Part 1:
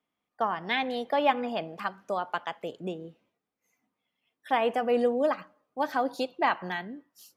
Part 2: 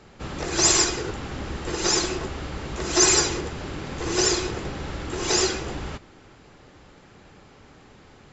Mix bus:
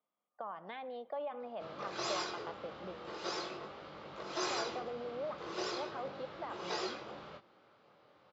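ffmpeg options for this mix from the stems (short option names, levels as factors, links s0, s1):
-filter_complex "[0:a]highshelf=f=2700:g=-11,alimiter=limit=0.0668:level=0:latency=1:release=24,acompressor=threshold=0.00891:ratio=2,volume=0.562[s0];[1:a]flanger=delay=19.5:depth=6.5:speed=0.4,adelay=1400,volume=0.316[s1];[s0][s1]amix=inputs=2:normalize=0,highpass=220,equalizer=f=270:t=q:w=4:g=-7,equalizer=f=380:t=q:w=4:g=-4,equalizer=f=570:t=q:w=4:g=6,equalizer=f=1200:t=q:w=4:g=5,equalizer=f=1800:t=q:w=4:g=-5,equalizer=f=2600:t=q:w=4:g=-3,lowpass=f=4400:w=0.5412,lowpass=f=4400:w=1.3066"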